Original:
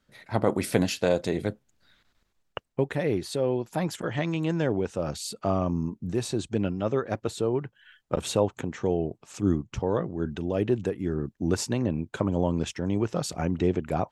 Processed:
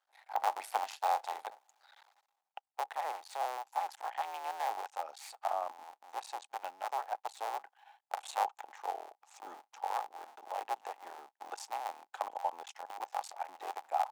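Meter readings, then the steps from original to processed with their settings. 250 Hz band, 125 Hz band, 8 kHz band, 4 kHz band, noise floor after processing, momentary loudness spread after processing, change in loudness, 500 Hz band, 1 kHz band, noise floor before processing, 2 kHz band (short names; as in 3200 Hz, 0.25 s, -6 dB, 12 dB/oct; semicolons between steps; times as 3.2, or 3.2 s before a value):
under -35 dB, under -40 dB, -12.5 dB, -11.0 dB, under -85 dBFS, 14 LU, -10.5 dB, -17.5 dB, +2.5 dB, -73 dBFS, -8.5 dB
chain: cycle switcher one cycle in 2, muted; reverse; upward compressor, threshold -37 dBFS; reverse; ladder high-pass 770 Hz, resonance 80%; gain +1 dB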